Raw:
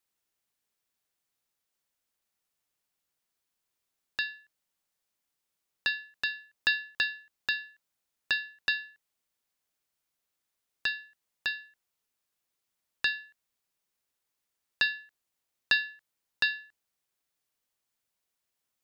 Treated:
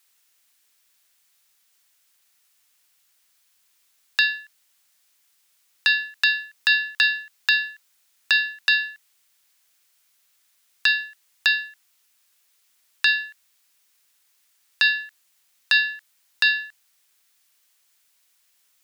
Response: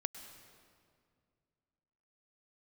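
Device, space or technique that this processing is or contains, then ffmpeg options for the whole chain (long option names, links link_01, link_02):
mastering chain: -af "highpass=57,equalizer=frequency=1700:width_type=o:width=1.5:gain=2,acompressor=threshold=-28dB:ratio=2.5,asoftclip=type=tanh:threshold=-10.5dB,tiltshelf=frequency=1100:gain=-7.5,alimiter=level_in=16dB:limit=-1dB:release=50:level=0:latency=1,volume=-4.5dB"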